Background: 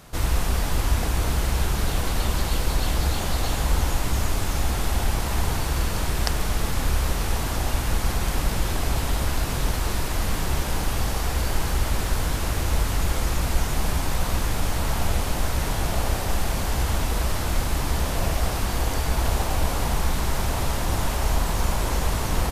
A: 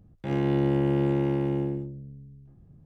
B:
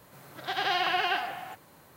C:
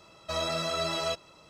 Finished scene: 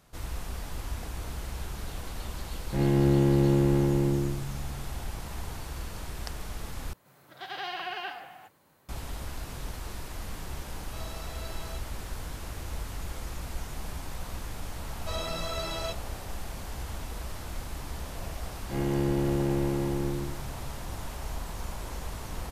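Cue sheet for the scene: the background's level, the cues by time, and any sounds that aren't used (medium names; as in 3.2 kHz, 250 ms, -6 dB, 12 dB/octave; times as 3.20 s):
background -13.5 dB
2.49 s: add A -1.5 dB + bass shelf 220 Hz +6.5 dB
6.93 s: replace with B -8.5 dB
10.64 s: add C -16 dB
14.78 s: add C -4.5 dB
18.46 s: add A -3.5 dB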